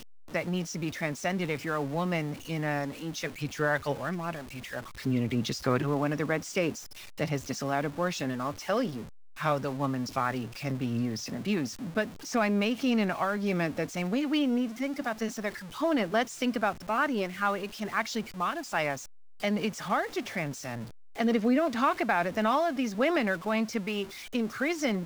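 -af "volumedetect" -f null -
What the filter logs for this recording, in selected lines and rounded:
mean_volume: -30.2 dB
max_volume: -12.2 dB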